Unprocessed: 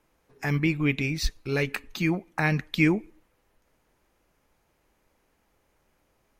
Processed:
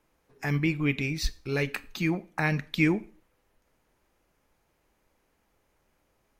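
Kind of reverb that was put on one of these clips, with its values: Schroeder reverb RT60 0.38 s, combs from 28 ms, DRR 18 dB; gain -2 dB

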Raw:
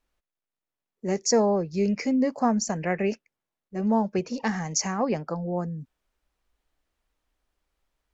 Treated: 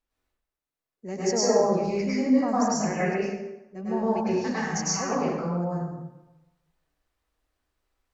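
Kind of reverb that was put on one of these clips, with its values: plate-style reverb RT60 1 s, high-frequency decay 0.7×, pre-delay 90 ms, DRR -9 dB; gain -8.5 dB

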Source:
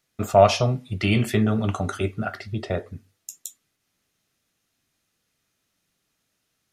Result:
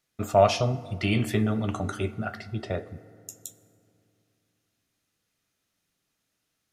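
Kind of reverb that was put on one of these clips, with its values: FDN reverb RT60 2.7 s, low-frequency decay 1.25×, high-frequency decay 0.4×, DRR 15 dB; gain -4 dB

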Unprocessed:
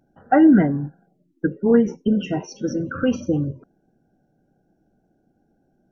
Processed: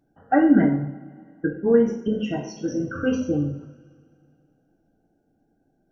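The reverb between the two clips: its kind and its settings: two-slope reverb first 0.53 s, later 2.5 s, from -21 dB, DRR 0.5 dB; gain -5 dB

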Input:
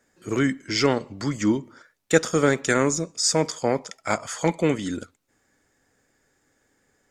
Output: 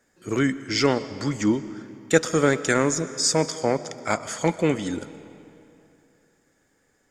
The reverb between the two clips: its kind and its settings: digital reverb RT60 2.8 s, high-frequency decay 0.8×, pre-delay 80 ms, DRR 14.5 dB

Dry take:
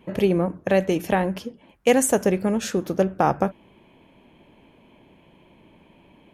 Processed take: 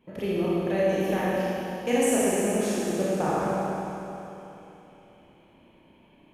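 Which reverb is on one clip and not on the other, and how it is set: Schroeder reverb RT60 3.2 s, combs from 26 ms, DRR -8 dB; gain -12 dB

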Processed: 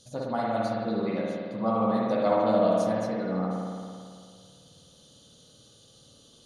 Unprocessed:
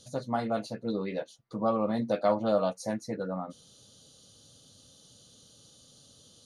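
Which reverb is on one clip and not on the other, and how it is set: spring tank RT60 2.1 s, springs 54 ms, chirp 25 ms, DRR -4 dB; gain -1.5 dB

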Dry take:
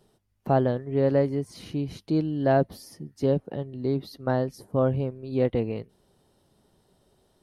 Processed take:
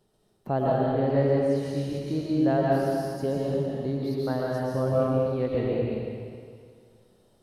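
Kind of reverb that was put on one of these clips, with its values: digital reverb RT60 2.1 s, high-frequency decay 1×, pre-delay 85 ms, DRR -5 dB; gain -5.5 dB

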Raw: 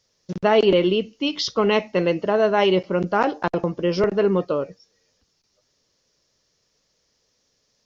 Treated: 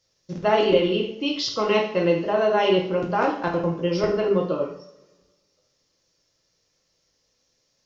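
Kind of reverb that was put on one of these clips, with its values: two-slope reverb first 0.54 s, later 1.6 s, from -21 dB, DRR -1 dB; gain -5 dB

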